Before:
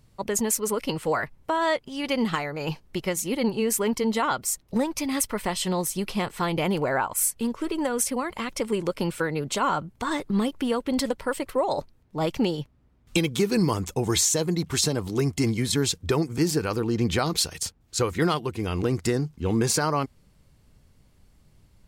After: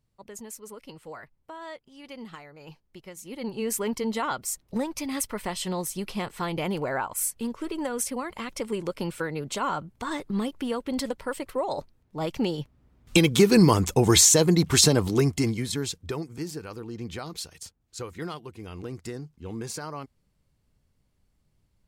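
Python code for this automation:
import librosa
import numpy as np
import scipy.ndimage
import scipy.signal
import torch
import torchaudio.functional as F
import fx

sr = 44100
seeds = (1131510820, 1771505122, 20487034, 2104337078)

y = fx.gain(x, sr, db=fx.line((3.11, -16.5), (3.67, -4.0), (12.28, -4.0), (13.33, 5.5), (15.02, 5.5), (15.68, -5.0), (16.59, -12.0)))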